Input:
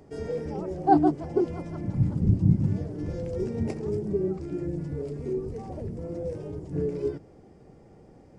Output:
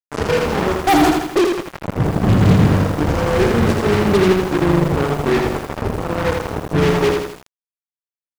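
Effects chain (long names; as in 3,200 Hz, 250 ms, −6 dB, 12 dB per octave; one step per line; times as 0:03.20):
0:00.77–0:02.29: bass and treble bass −8 dB, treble −4 dB
fuzz pedal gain 35 dB, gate −32 dBFS
feedback echo at a low word length 81 ms, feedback 55%, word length 6 bits, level −3.5 dB
level +2.5 dB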